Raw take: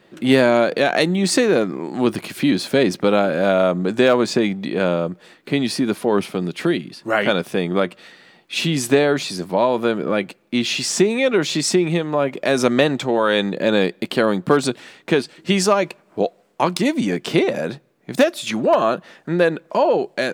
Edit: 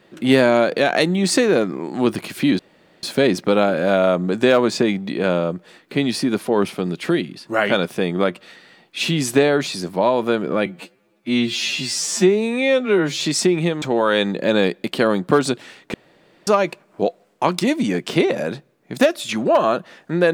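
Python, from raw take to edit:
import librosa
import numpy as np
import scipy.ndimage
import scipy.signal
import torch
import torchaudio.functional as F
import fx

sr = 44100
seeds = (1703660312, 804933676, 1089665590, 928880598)

y = fx.edit(x, sr, fx.insert_room_tone(at_s=2.59, length_s=0.44),
    fx.stretch_span(start_s=10.22, length_s=1.27, factor=2.0),
    fx.cut(start_s=12.11, length_s=0.89),
    fx.room_tone_fill(start_s=15.12, length_s=0.53), tone=tone)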